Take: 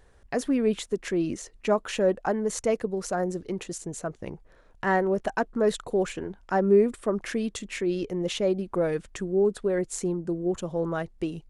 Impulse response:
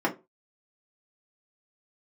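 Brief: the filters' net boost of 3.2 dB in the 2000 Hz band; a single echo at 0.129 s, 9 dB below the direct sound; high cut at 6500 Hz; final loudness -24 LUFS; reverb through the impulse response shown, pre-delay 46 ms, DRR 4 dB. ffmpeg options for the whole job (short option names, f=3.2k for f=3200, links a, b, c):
-filter_complex "[0:a]lowpass=6.5k,equalizer=f=2k:t=o:g=4,aecho=1:1:129:0.355,asplit=2[a][b];[1:a]atrim=start_sample=2205,adelay=46[c];[b][c]afir=irnorm=-1:irlink=0,volume=-16dB[d];[a][d]amix=inputs=2:normalize=0,volume=0.5dB"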